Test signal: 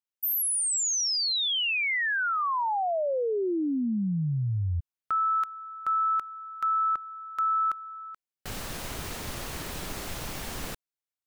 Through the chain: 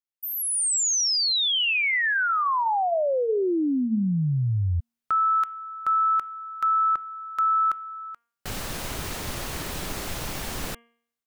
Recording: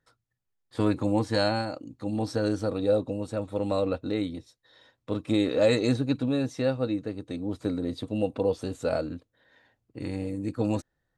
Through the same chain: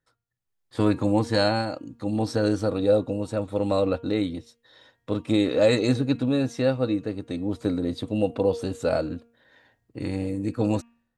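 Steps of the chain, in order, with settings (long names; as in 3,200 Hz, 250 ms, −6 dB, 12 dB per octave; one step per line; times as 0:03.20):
automatic gain control gain up to 9 dB
hum removal 234 Hz, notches 14
level −5 dB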